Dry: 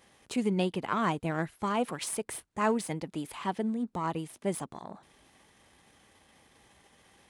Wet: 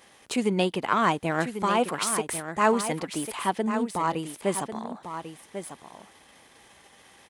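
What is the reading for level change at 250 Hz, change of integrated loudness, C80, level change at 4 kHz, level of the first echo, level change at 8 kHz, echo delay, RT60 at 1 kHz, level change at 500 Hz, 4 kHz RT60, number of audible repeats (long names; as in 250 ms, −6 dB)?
+3.5 dB, +5.5 dB, no reverb audible, +8.0 dB, −9.5 dB, +8.0 dB, 1,095 ms, no reverb audible, +6.0 dB, no reverb audible, 1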